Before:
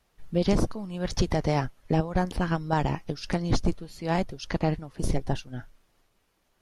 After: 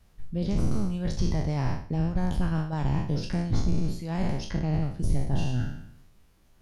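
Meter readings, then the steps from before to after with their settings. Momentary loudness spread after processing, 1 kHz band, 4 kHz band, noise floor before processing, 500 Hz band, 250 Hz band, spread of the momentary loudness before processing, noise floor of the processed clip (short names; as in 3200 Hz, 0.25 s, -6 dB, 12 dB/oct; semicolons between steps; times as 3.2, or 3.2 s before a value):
3 LU, -7.0 dB, -4.5 dB, -71 dBFS, -7.0 dB, -0.5 dB, 8 LU, -59 dBFS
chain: spectral trails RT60 0.76 s; reverse; compressor 6:1, threshold -31 dBFS, peak gain reduction 14.5 dB; reverse; tone controls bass +12 dB, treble +2 dB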